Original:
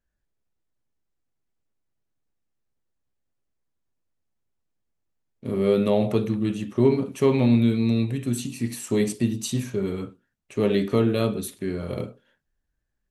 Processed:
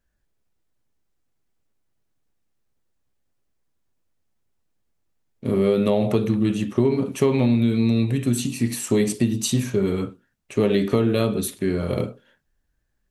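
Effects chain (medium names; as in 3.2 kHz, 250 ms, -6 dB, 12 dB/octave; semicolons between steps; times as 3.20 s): compression, threshold -21 dBFS, peak gain reduction 8 dB; trim +6 dB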